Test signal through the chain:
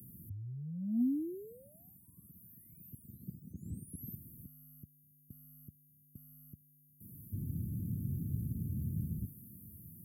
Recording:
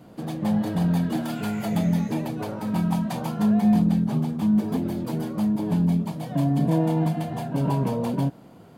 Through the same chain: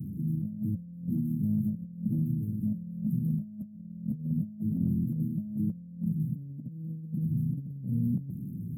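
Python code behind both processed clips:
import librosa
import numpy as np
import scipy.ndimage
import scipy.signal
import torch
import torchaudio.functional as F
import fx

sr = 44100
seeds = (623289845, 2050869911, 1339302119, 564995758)

y = fx.delta_mod(x, sr, bps=64000, step_db=-30.0)
y = scipy.signal.sosfilt(scipy.signal.cheby2(4, 70, [800.0, 5800.0], 'bandstop', fs=sr, output='sos'), y)
y = fx.high_shelf(y, sr, hz=10000.0, db=-4.0)
y = fx.over_compress(y, sr, threshold_db=-31.0, ratio=-0.5)
y = scipy.signal.sosfilt(scipy.signal.butter(4, 79.0, 'highpass', fs=sr, output='sos'), y)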